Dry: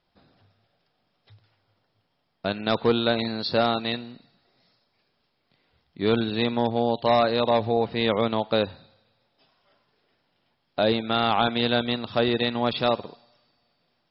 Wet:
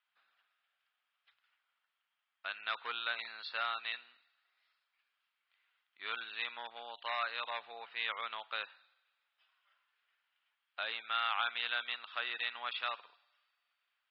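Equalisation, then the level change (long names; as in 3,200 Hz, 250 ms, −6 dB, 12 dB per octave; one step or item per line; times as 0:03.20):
Chebyshev band-pass filter 1,300–3,000 Hz, order 2
−5.0 dB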